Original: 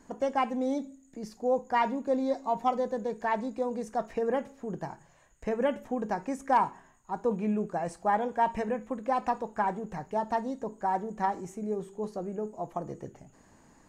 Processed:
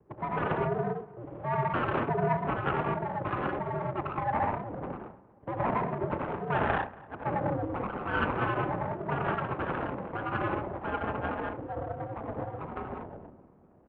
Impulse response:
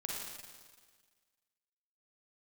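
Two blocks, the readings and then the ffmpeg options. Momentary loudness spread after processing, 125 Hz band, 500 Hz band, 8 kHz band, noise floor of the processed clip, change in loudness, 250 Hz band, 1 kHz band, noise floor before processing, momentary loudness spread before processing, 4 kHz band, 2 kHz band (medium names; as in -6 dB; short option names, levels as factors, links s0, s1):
10 LU, +10.0 dB, -2.5 dB, under -25 dB, -57 dBFS, -1.0 dB, -2.5 dB, -1.5 dB, -60 dBFS, 10 LU, +1.0 dB, +5.0 dB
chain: -filter_complex "[1:a]atrim=start_sample=2205,afade=t=out:st=0.19:d=0.01,atrim=end_sample=8820,asetrate=24696,aresample=44100[s0];[0:a][s0]afir=irnorm=-1:irlink=0,acrossover=split=630|960[s1][s2][s3];[s3]acrusher=samples=38:mix=1:aa=0.000001:lfo=1:lforange=22.8:lforate=0.47[s4];[s1][s2][s4]amix=inputs=3:normalize=0,aeval=exprs='abs(val(0))':c=same,adynamicsmooth=sensitivity=2.5:basefreq=1000,asplit=2[s5][s6];[s6]adelay=235,lowpass=f=2200:p=1,volume=0.0944,asplit=2[s7][s8];[s8]adelay=235,lowpass=f=2200:p=1,volume=0.51,asplit=2[s9][s10];[s10]adelay=235,lowpass=f=2200:p=1,volume=0.51,asplit=2[s11][s12];[s12]adelay=235,lowpass=f=2200:p=1,volume=0.51[s13];[s5][s7][s9][s11][s13]amix=inputs=5:normalize=0,highpass=f=190:t=q:w=0.5412,highpass=f=190:t=q:w=1.307,lowpass=f=3200:t=q:w=0.5176,lowpass=f=3200:t=q:w=0.7071,lowpass=f=3200:t=q:w=1.932,afreqshift=-110,volume=1.33"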